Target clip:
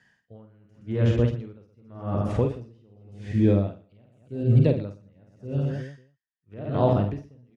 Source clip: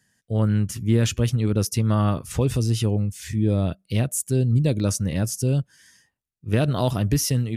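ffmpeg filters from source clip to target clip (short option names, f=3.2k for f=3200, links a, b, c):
-filter_complex "[0:a]acrossover=split=770[a][b];[a]lowshelf=f=400:g=-9[c];[b]acompressor=threshold=-44dB:ratio=6[d];[c][d]amix=inputs=2:normalize=0,lowpass=2.7k,asplit=2[e][f];[f]aecho=0:1:50|120|218|355.2|547.3:0.631|0.398|0.251|0.158|0.1[g];[e][g]amix=inputs=2:normalize=0,alimiter=level_in=16dB:limit=-1dB:release=50:level=0:latency=1,aeval=exprs='val(0)*pow(10,-36*(0.5-0.5*cos(2*PI*0.87*n/s))/20)':c=same,volume=-7.5dB"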